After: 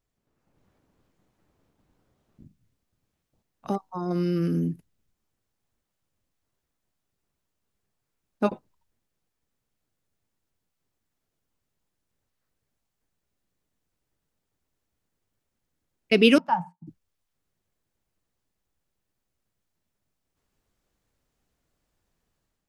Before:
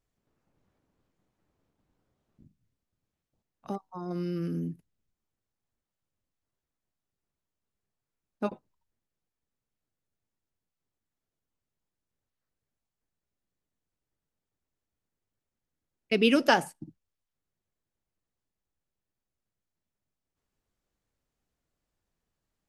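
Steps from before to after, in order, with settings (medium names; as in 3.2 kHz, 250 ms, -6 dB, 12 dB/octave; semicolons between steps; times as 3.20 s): level rider gain up to 7 dB; 16.38–16.87 s: two resonant band-passes 400 Hz, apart 2.4 oct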